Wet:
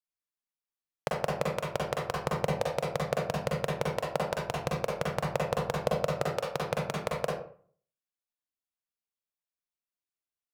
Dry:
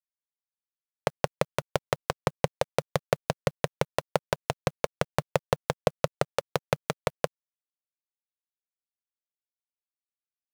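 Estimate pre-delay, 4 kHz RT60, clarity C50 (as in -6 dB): 40 ms, 0.30 s, 0.5 dB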